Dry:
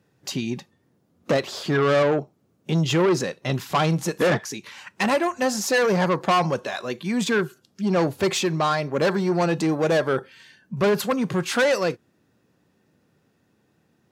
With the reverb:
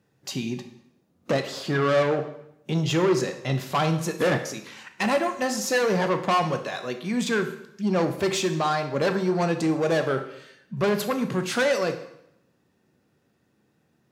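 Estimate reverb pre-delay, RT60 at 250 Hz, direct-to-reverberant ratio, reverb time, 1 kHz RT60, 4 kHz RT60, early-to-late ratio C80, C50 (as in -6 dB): 5 ms, 0.80 s, 7.0 dB, 0.80 s, 0.80 s, 0.75 s, 13.0 dB, 10.5 dB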